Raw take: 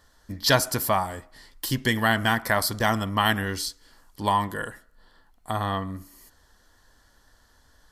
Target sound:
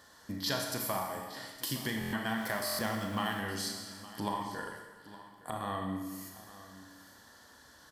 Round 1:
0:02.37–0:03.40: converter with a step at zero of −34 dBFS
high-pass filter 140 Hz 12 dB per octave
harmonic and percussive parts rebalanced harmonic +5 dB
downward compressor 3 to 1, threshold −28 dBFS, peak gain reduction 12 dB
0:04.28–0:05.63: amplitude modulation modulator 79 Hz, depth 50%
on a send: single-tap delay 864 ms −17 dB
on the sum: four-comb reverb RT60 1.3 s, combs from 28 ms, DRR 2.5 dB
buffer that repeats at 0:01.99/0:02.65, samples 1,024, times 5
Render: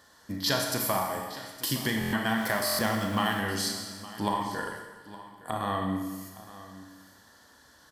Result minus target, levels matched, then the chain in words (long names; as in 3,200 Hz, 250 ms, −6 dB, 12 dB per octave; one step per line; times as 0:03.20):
downward compressor: peak gain reduction −6.5 dB
0:02.37–0:03.40: converter with a step at zero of −34 dBFS
high-pass filter 140 Hz 12 dB per octave
harmonic and percussive parts rebalanced harmonic +5 dB
downward compressor 3 to 1, threshold −37.5 dBFS, peak gain reduction 18.5 dB
0:04.28–0:05.63: amplitude modulation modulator 79 Hz, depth 50%
on a send: single-tap delay 864 ms −17 dB
on the sum: four-comb reverb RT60 1.3 s, combs from 28 ms, DRR 2.5 dB
buffer that repeats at 0:01.99/0:02.65, samples 1,024, times 5